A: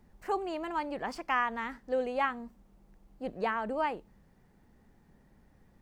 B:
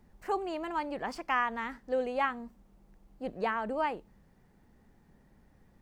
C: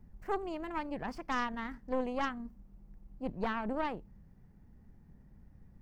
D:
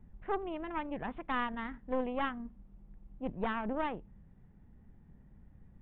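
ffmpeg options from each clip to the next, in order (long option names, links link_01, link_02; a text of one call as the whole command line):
ffmpeg -i in.wav -af anull out.wav
ffmpeg -i in.wav -af "bass=frequency=250:gain=13,treble=frequency=4000:gain=-12,aexciter=amount=2.6:drive=3.9:freq=4900,aeval=exprs='0.15*(cos(1*acos(clip(val(0)/0.15,-1,1)))-cos(1*PI/2))+0.0335*(cos(4*acos(clip(val(0)/0.15,-1,1)))-cos(4*PI/2))':channel_layout=same,volume=-6dB" out.wav
ffmpeg -i in.wav -af "aresample=8000,aresample=44100" out.wav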